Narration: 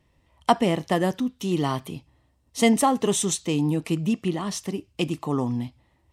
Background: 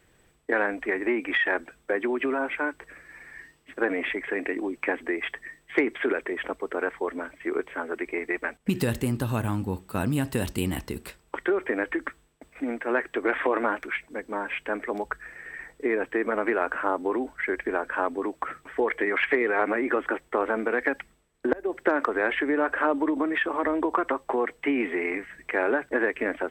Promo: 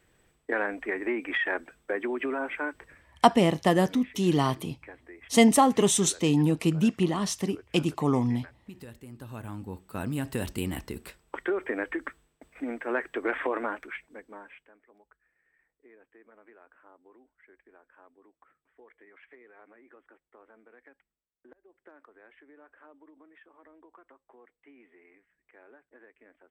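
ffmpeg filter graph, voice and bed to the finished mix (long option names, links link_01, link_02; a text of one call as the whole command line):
ffmpeg -i stem1.wav -i stem2.wav -filter_complex "[0:a]adelay=2750,volume=0.5dB[link_01];[1:a]volume=12dB,afade=type=out:start_time=2.79:duration=0.33:silence=0.158489,afade=type=in:start_time=9.07:duration=1.33:silence=0.158489,afade=type=out:start_time=13.34:duration=1.38:silence=0.0446684[link_02];[link_01][link_02]amix=inputs=2:normalize=0" out.wav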